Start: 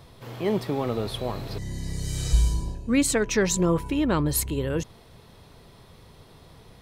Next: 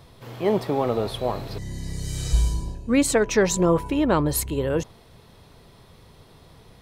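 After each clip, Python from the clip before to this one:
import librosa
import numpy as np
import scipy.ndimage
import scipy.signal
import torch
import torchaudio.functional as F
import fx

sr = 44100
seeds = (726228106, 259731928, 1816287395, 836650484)

y = fx.dynamic_eq(x, sr, hz=690.0, q=0.8, threshold_db=-37.0, ratio=4.0, max_db=7)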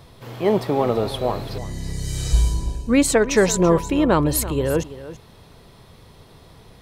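y = x + 10.0 ** (-15.0 / 20.0) * np.pad(x, (int(333 * sr / 1000.0), 0))[:len(x)]
y = F.gain(torch.from_numpy(y), 3.0).numpy()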